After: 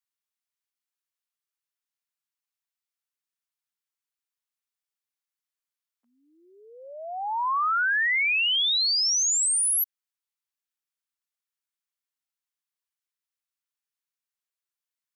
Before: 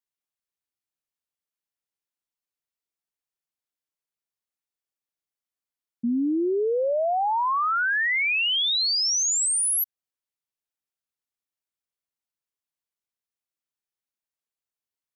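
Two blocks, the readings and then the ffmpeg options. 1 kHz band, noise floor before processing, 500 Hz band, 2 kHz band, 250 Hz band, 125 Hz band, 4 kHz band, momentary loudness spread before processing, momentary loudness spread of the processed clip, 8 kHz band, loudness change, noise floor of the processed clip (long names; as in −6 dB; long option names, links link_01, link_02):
−3.0 dB, below −85 dBFS, −18.5 dB, 0.0 dB, below −35 dB, can't be measured, 0.0 dB, 5 LU, 11 LU, 0.0 dB, +0.5 dB, below −85 dBFS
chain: -af "highpass=frequency=960:width=0.5412,highpass=frequency=960:width=1.3066"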